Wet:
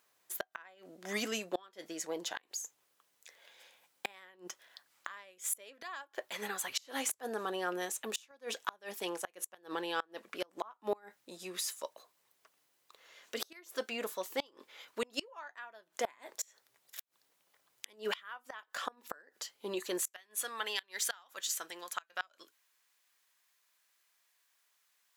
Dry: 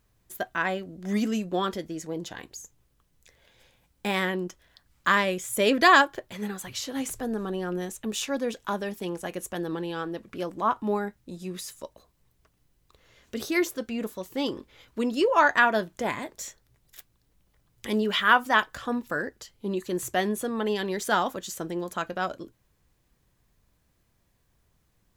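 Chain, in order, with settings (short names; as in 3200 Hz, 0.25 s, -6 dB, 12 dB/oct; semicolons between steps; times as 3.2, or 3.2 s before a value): HPF 620 Hz 12 dB/oct, from 20 s 1400 Hz; flipped gate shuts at -23 dBFS, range -29 dB; gain +2 dB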